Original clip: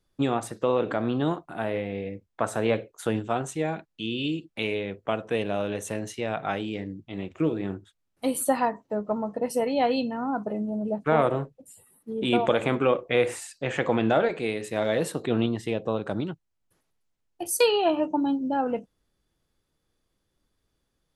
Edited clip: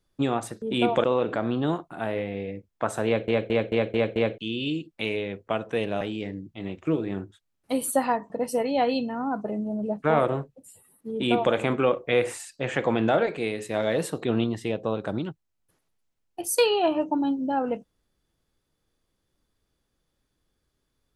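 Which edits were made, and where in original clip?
2.64 s: stutter in place 0.22 s, 6 plays
5.59–6.54 s: delete
8.83–9.32 s: delete
12.13–12.55 s: copy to 0.62 s

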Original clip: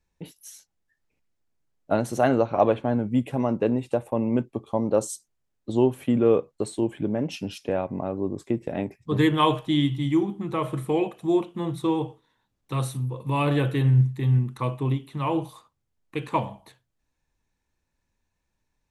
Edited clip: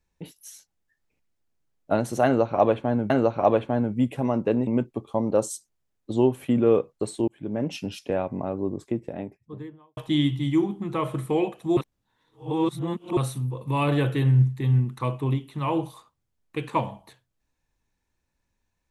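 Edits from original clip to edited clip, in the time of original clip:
2.25–3.10 s: loop, 2 plays
3.82–4.26 s: delete
6.87–7.22 s: fade in
8.13–9.56 s: studio fade out
11.36–12.76 s: reverse

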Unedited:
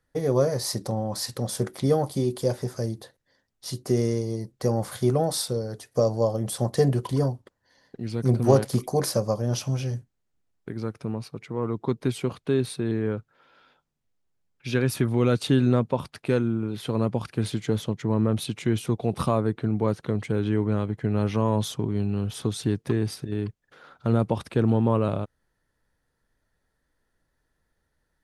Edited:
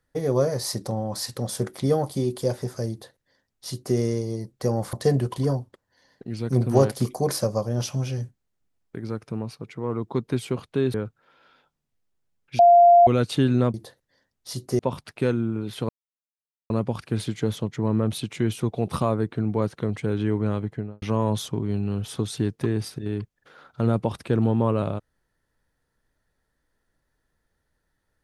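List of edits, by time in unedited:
2.91–3.96 s: copy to 15.86 s
4.93–6.66 s: delete
12.67–13.06 s: delete
14.71–15.19 s: bleep 695 Hz -9.5 dBFS
16.96 s: insert silence 0.81 s
20.90–21.28 s: studio fade out

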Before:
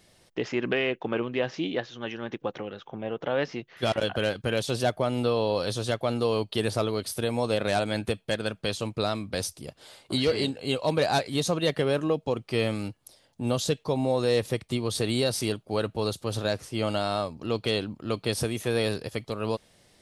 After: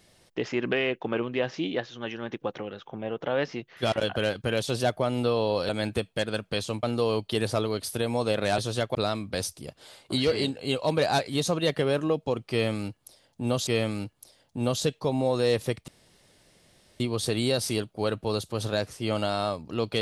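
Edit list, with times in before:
5.69–6.06 s: swap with 7.81–8.95 s
12.51–13.67 s: loop, 2 plays
14.72 s: insert room tone 1.12 s

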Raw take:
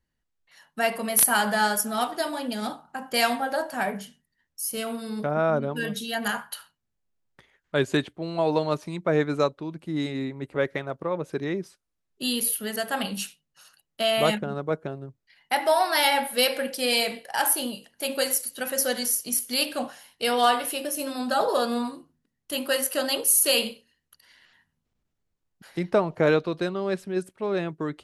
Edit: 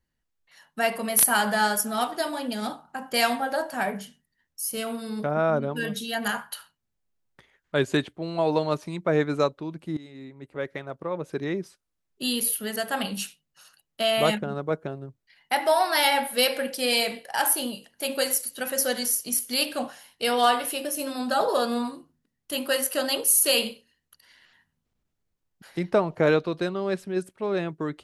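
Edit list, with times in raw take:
9.97–11.51 s: fade in, from -19 dB

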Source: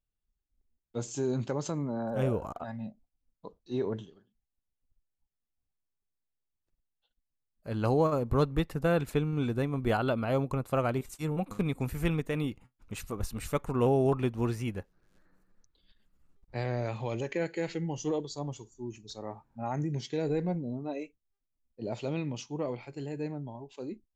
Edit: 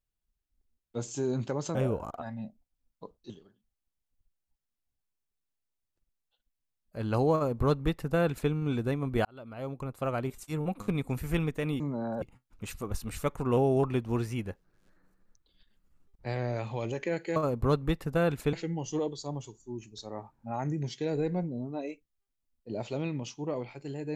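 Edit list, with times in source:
1.75–2.17 s: move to 12.51 s
3.72–4.01 s: delete
8.05–9.22 s: copy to 17.65 s
9.96–11.66 s: fade in equal-power

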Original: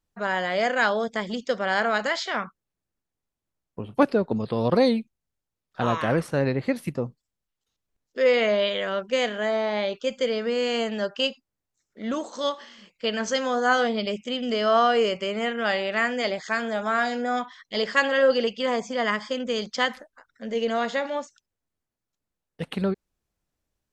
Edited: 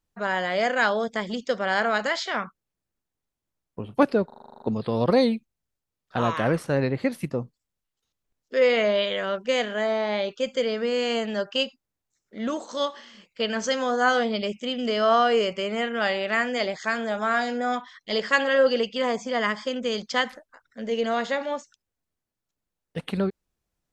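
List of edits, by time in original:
4.26 s: stutter 0.04 s, 10 plays

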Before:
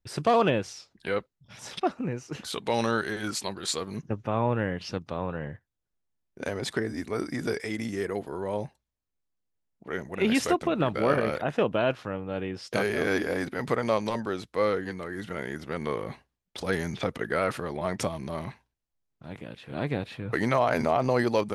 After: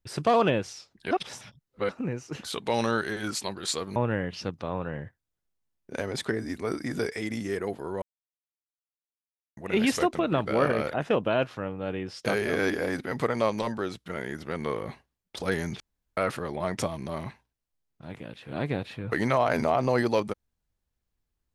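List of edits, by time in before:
1.11–1.89 s: reverse
3.96–4.44 s: delete
8.50–10.05 s: mute
14.54–15.27 s: delete
17.01–17.38 s: room tone

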